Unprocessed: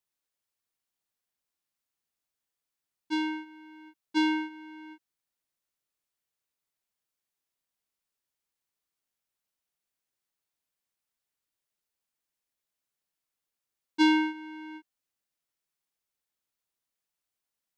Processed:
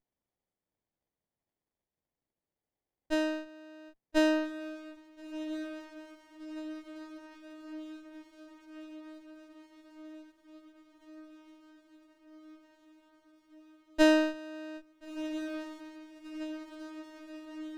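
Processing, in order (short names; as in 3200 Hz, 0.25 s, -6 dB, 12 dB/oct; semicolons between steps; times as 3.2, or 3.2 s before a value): diffused feedback echo 1.386 s, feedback 73%, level -10.5 dB; running maximum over 33 samples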